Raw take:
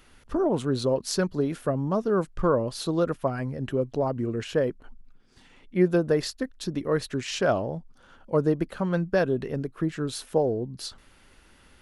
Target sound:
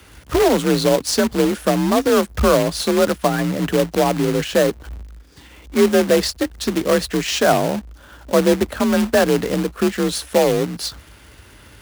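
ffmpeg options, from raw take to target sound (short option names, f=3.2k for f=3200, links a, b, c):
-filter_complex "[0:a]asplit=2[a][b];[b]alimiter=limit=-21.5dB:level=0:latency=1:release=27,volume=0.5dB[c];[a][c]amix=inputs=2:normalize=0,acrusher=bits=2:mode=log:mix=0:aa=0.000001,afreqshift=43,volume=4dB"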